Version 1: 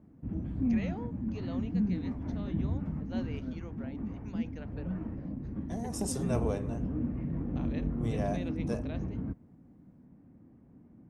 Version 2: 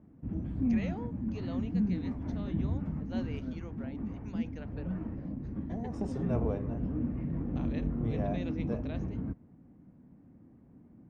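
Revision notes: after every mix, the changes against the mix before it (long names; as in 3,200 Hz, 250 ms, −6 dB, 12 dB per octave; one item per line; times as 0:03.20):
second voice: add head-to-tape spacing loss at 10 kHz 32 dB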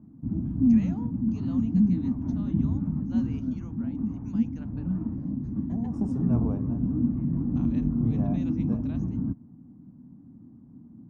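first voice: add spectral tilt +3 dB per octave
master: add octave-band graphic EQ 125/250/500/1,000/2,000/4,000 Hz +6/+10/−9/+4/−9/−10 dB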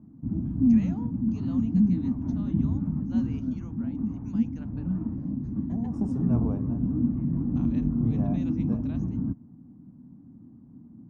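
nothing changed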